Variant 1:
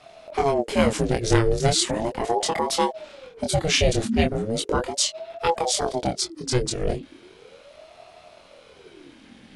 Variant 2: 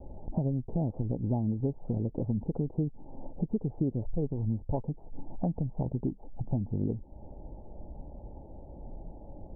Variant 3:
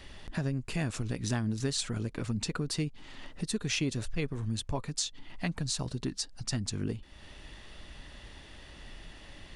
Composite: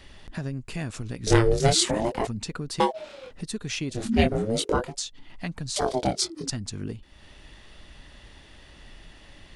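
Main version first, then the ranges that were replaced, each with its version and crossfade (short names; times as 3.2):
3
1.27–2.27 from 1
2.8–3.31 from 1
4.02–4.85 from 1, crossfade 0.24 s
5.76–6.5 from 1
not used: 2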